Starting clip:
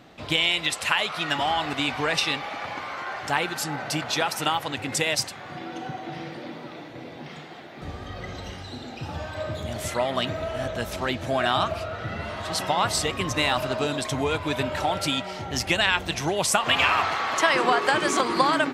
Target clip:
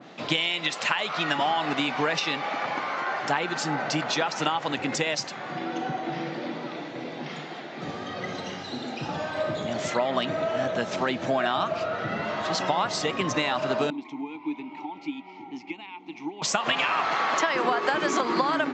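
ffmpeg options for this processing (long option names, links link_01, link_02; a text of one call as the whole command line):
ffmpeg -i in.wav -filter_complex "[0:a]acompressor=threshold=-25dB:ratio=6,asettb=1/sr,asplit=3[link_01][link_02][link_03];[link_01]atrim=end=13.904[link_04];[link_02]atrim=start=13.9:end=16.42,asetpts=PTS-STARTPTS,afade=type=in:duration=0.004:curve=qsin,afade=type=out:start_time=2.516:duration=0.004:curve=qsin,asplit=3[link_05][link_06][link_07];[link_05]bandpass=frequency=300:width_type=q:width=8,volume=0dB[link_08];[link_06]bandpass=frequency=870:width_type=q:width=8,volume=-6dB[link_09];[link_07]bandpass=frequency=2240:width_type=q:width=8,volume=-9dB[link_10];[link_08][link_09][link_10]amix=inputs=3:normalize=0[link_11];[link_03]atrim=start=16.416[link_12];[link_04][link_11]acrossfade=duration=0.004:curve1=hsin:curve2=qsin[link_13];[link_13][link_12]acrossfade=duration=0.004:curve1=qsin:curve2=hsin,aresample=16000,aresample=44100,highpass=frequency=150:width=0.5412,highpass=frequency=150:width=1.3066,adynamicequalizer=threshold=0.00708:dfrequency=2200:dqfactor=0.7:tfrequency=2200:tqfactor=0.7:attack=5:release=100:ratio=0.375:range=2:mode=cutabove:tftype=highshelf,volume=4.5dB" out.wav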